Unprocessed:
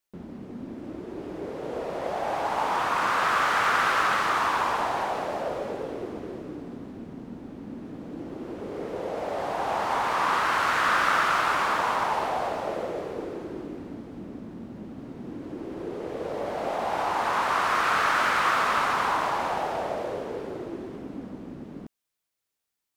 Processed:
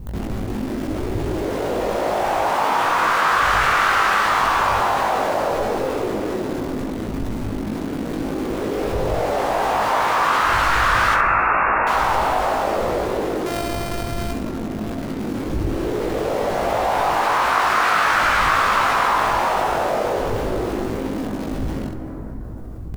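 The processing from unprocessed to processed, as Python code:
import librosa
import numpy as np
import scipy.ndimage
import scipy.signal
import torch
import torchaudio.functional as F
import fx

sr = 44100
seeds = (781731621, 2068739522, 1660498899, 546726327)

p1 = fx.sample_sort(x, sr, block=128, at=(13.46, 14.32))
p2 = fx.dmg_wind(p1, sr, seeds[0], corner_hz=84.0, level_db=-40.0)
p3 = fx.low_shelf(p2, sr, hz=440.0, db=-2.5)
p4 = fx.quant_dither(p3, sr, seeds[1], bits=6, dither='none')
p5 = p3 + (p4 * librosa.db_to_amplitude(-9.0))
p6 = fx.brickwall_lowpass(p5, sr, high_hz=2800.0, at=(11.14, 11.87))
p7 = p6 + fx.room_early_taps(p6, sr, ms=(19, 67), db=(-3.5, -7.5), dry=0)
p8 = fx.rev_plate(p7, sr, seeds[2], rt60_s=3.6, hf_ratio=0.3, predelay_ms=0, drr_db=9.5)
y = fx.env_flatten(p8, sr, amount_pct=50)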